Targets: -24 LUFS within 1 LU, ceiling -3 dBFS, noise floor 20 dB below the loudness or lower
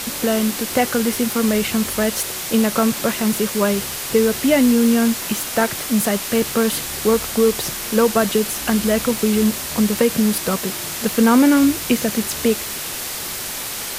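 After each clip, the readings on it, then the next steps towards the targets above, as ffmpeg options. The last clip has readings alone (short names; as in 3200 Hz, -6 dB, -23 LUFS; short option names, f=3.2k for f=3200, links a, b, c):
noise floor -28 dBFS; noise floor target -39 dBFS; loudness -18.5 LUFS; peak -3.5 dBFS; loudness target -24.0 LUFS
-> -af "afftdn=nr=11:nf=-28"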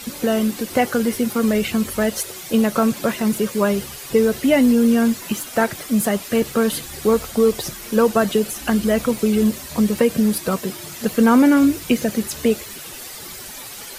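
noise floor -35 dBFS; noise floor target -39 dBFS
-> -af "afftdn=nr=6:nf=-35"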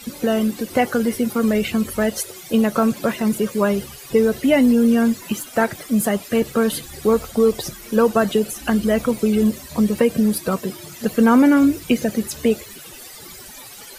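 noise floor -39 dBFS; loudness -19.0 LUFS; peak -4.5 dBFS; loudness target -24.0 LUFS
-> -af "volume=-5dB"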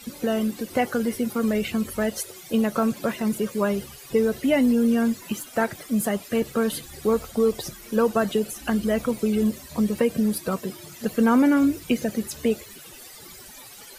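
loudness -24.0 LUFS; peak -9.5 dBFS; noise floor -44 dBFS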